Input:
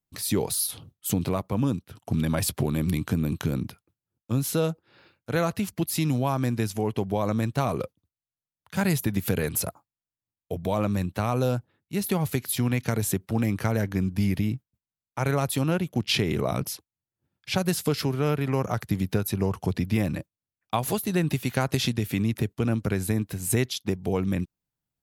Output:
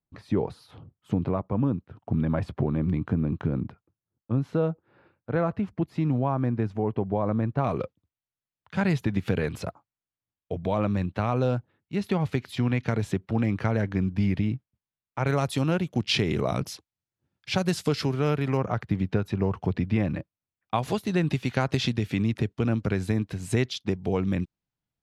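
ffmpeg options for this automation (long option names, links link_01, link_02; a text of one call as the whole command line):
ffmpeg -i in.wav -af "asetnsamples=nb_out_samples=441:pad=0,asendcmd='7.64 lowpass f 3300;15.27 lowpass f 6500;18.57 lowpass f 2700;20.75 lowpass f 4800',lowpass=1400" out.wav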